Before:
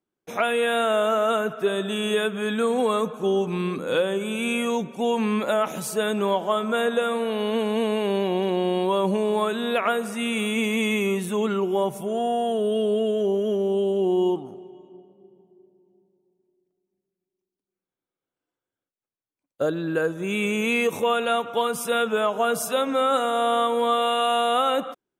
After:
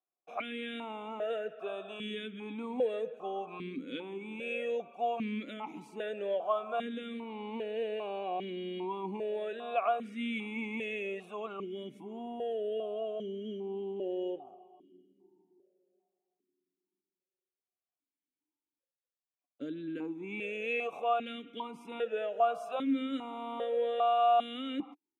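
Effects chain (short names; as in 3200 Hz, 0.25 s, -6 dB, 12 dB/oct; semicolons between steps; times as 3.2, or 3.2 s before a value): vowel sequencer 2.5 Hz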